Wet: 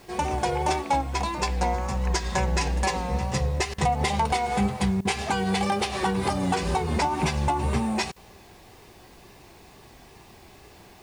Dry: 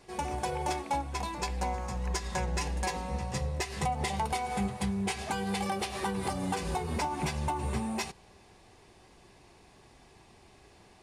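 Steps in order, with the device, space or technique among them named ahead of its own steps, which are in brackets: worn cassette (low-pass 8.1 kHz 12 dB/octave; wow and flutter; level dips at 3.74/5.01/8.12 s, 40 ms -19 dB; white noise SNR 35 dB); trim +7.5 dB

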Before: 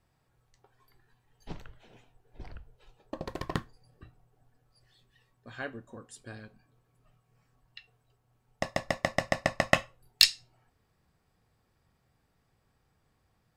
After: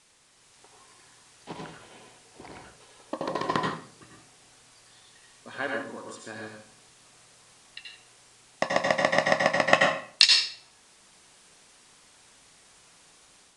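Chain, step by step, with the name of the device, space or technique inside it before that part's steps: filmed off a television (band-pass 240–7100 Hz; peaking EQ 1 kHz +5 dB 0.3 oct; reverberation RT60 0.50 s, pre-delay 76 ms, DRR 0 dB; white noise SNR 24 dB; level rider gain up to 5.5 dB; AAC 96 kbps 22.05 kHz)

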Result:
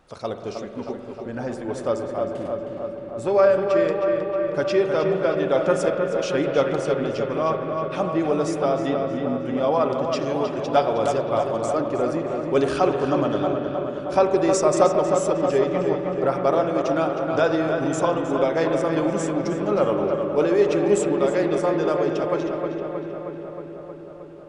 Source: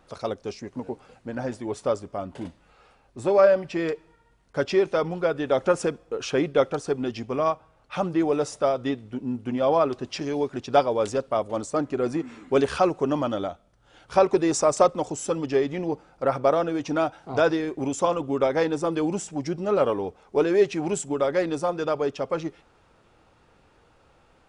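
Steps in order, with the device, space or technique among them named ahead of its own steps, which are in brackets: dub delay into a spring reverb (filtered feedback delay 314 ms, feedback 74%, low-pass 3.2 kHz, level -5.5 dB; spring tank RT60 3.6 s, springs 44 ms, chirp 40 ms, DRR 6 dB)

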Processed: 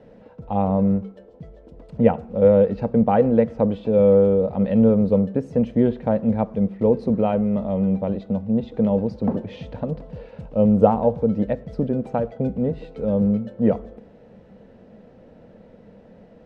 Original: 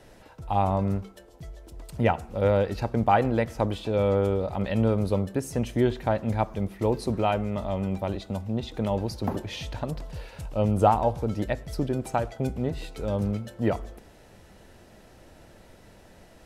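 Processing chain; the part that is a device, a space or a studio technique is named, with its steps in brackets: inside a cardboard box (low-pass 3.2 kHz 12 dB/octave; small resonant body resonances 210/470 Hz, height 17 dB, ringing for 30 ms); trim -6 dB

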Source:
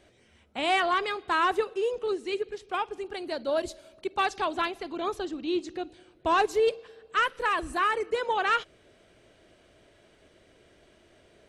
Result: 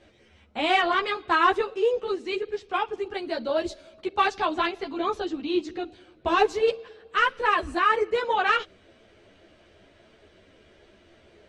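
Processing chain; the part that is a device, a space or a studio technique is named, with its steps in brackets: string-machine ensemble chorus (three-phase chorus; low-pass 5.6 kHz 12 dB/octave); trim +6.5 dB

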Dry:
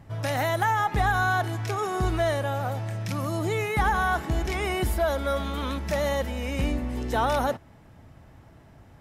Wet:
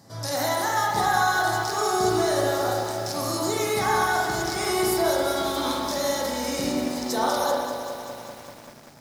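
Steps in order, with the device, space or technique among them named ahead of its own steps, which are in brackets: high-pass 200 Hz 12 dB/octave; over-bright horn tweeter (resonant high shelf 3.6 kHz +10 dB, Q 3; peak limiter -19 dBFS, peak gain reduction 10 dB); spring tank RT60 1.2 s, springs 35/44 ms, chirp 75 ms, DRR -3 dB; bit-crushed delay 194 ms, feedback 80%, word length 7-bit, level -9.5 dB

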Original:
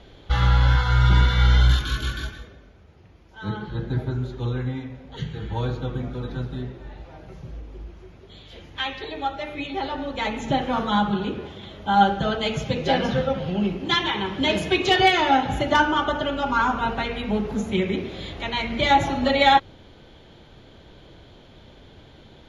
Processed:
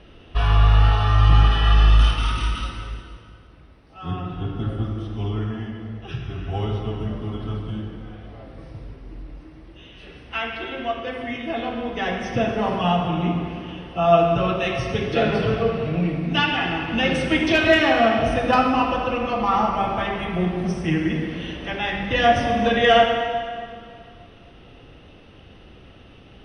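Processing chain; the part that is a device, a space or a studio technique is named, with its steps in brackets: slowed and reverbed (tape speed -15%; reverberation RT60 2.2 s, pre-delay 29 ms, DRR 3 dB)

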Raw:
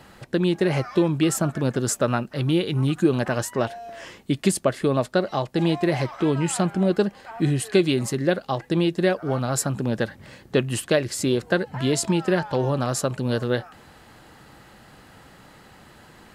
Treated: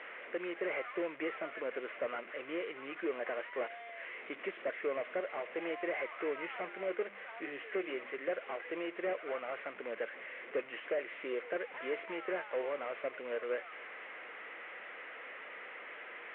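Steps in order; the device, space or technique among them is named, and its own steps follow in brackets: 6.57–8.33 s: hum notches 50/100/150/200/250/300/350 Hz; digital answering machine (band-pass 400–3200 Hz; one-bit delta coder 16 kbps, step -34.5 dBFS; cabinet simulation 470–3200 Hz, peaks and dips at 480 Hz +5 dB, 850 Hz -9 dB, 2.1 kHz +9 dB); trim -8 dB

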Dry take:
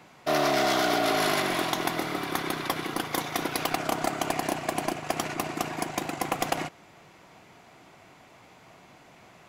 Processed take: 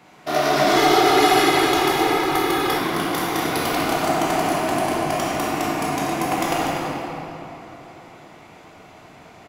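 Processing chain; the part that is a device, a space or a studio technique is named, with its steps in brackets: cave (delay 243 ms -10 dB; reverberation RT60 3.3 s, pre-delay 14 ms, DRR -6 dB); 0.76–2.78 s: comb 2.4 ms, depth 77%

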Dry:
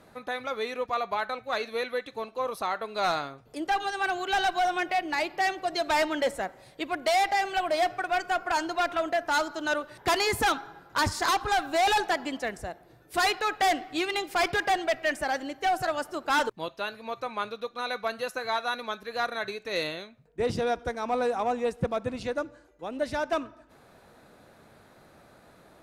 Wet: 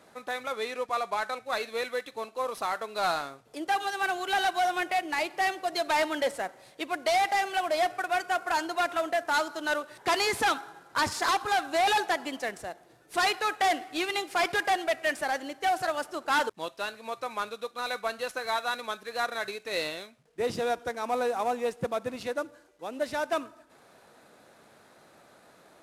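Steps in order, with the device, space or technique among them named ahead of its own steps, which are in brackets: early wireless headset (high-pass 290 Hz 6 dB/octave; CVSD coder 64 kbps); 0.52–1.44 s: low-pass 12 kHz 12 dB/octave

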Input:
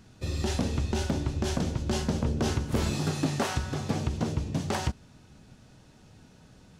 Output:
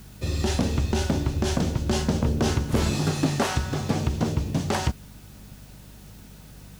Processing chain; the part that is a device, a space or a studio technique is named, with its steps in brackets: video cassette with head-switching buzz (mains buzz 50 Hz, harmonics 4, -52 dBFS; white noise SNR 29 dB); trim +4.5 dB

